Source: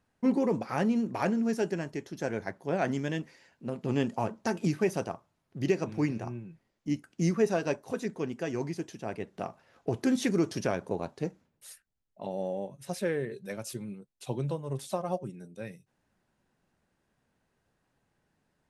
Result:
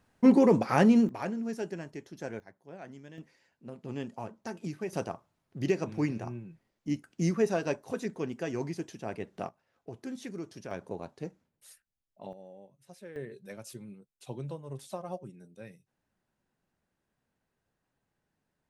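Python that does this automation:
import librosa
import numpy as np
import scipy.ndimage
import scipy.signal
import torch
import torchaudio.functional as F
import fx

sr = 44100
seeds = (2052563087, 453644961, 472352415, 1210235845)

y = fx.gain(x, sr, db=fx.steps((0.0, 6.0), (1.09, -6.0), (2.4, -17.0), (3.18, -9.0), (4.93, -1.0), (9.49, -13.0), (10.71, -6.0), (12.33, -16.5), (13.16, -6.5)))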